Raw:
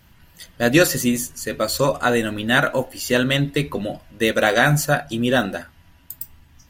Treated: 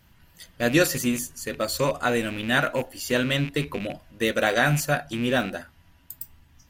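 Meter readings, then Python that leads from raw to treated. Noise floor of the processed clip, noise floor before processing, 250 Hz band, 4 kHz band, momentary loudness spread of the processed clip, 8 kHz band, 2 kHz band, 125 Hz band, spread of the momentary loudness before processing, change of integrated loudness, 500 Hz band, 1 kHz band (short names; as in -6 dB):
-58 dBFS, -53 dBFS, -5.0 dB, -4.5 dB, 15 LU, -5.0 dB, -4.5 dB, -5.0 dB, 16 LU, -5.0 dB, -5.0 dB, -5.0 dB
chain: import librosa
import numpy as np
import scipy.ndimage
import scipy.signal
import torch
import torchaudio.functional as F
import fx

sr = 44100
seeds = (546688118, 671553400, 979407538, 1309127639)

y = fx.rattle_buzz(x, sr, strikes_db=-30.0, level_db=-20.0)
y = y * 10.0 ** (-5.0 / 20.0)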